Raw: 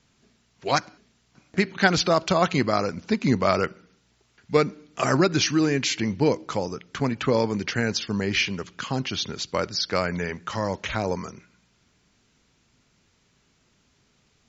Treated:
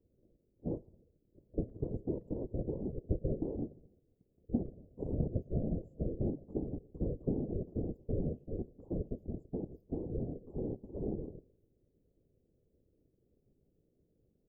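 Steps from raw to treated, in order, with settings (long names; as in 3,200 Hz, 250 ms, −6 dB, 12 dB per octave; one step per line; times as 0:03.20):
high-pass filter 150 Hz 12 dB per octave
ring modulation 210 Hz
downward compressor 6 to 1, threshold −29 dBFS, peak gain reduction 13.5 dB
inverse Chebyshev band-stop filter 1,400–6,100 Hz, stop band 70 dB
random phases in short frames
far-end echo of a speakerphone 110 ms, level −29 dB
level +2.5 dB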